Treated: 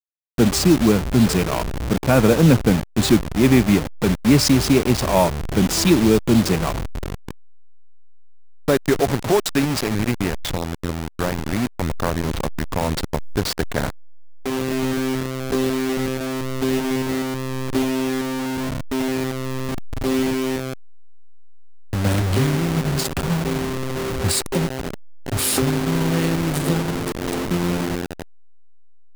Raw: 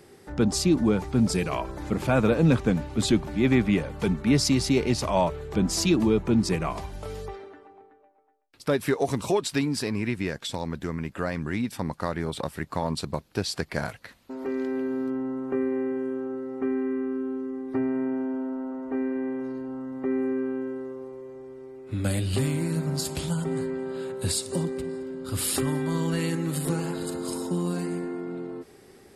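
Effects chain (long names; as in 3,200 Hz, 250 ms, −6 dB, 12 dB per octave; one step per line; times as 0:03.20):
hold until the input has moved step −25.5 dBFS
level +7 dB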